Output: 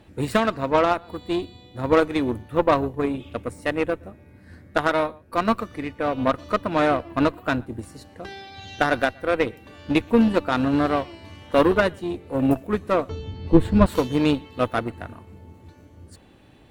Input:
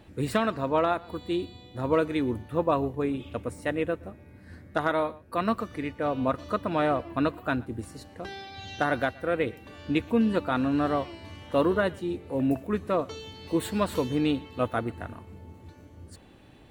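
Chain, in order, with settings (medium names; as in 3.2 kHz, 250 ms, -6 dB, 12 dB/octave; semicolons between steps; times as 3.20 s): Chebyshev shaper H 4 -19 dB, 7 -23 dB, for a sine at -11 dBFS; 13.09–13.86 s: RIAA curve playback; trim +7 dB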